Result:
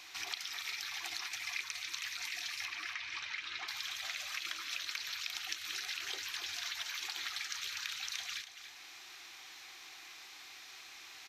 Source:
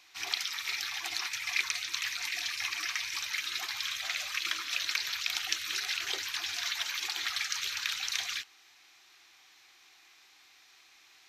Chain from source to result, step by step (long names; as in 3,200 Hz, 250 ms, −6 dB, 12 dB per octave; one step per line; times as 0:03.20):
0:02.65–0:03.68: low-pass filter 3,400 Hz 12 dB per octave
downward compressor 2.5 to 1, threshold −53 dBFS, peak gain reduction 18.5 dB
single-tap delay 283 ms −10.5 dB
level +7.5 dB